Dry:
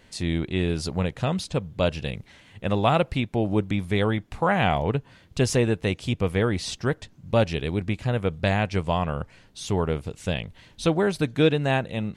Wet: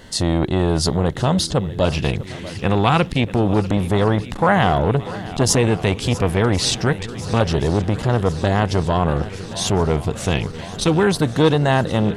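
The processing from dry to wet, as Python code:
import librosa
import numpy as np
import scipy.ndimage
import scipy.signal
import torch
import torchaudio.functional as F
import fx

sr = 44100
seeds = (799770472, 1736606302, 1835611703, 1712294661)

p1 = fx.filter_lfo_notch(x, sr, shape='square', hz=0.27, low_hz=600.0, high_hz=2400.0, q=2.8)
p2 = fx.over_compress(p1, sr, threshold_db=-28.0, ratio=-1.0)
p3 = p1 + (p2 * 10.0 ** (-1.0 / 20.0))
p4 = fx.echo_swing(p3, sr, ms=1073, ratio=1.5, feedback_pct=66, wet_db=-18.0)
p5 = fx.transformer_sat(p4, sr, knee_hz=550.0)
y = p5 * 10.0 ** (5.5 / 20.0)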